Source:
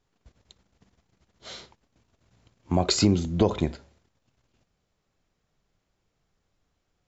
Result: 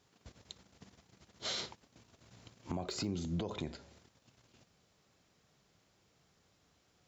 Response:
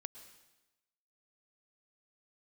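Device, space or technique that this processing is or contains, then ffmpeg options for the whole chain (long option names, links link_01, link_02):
broadcast voice chain: -af "highpass=89,deesser=0.95,acompressor=threshold=-38dB:ratio=5,equalizer=frequency=5200:width_type=o:width=1.6:gain=4,alimiter=level_in=9dB:limit=-24dB:level=0:latency=1:release=46,volume=-9dB,volume=5dB"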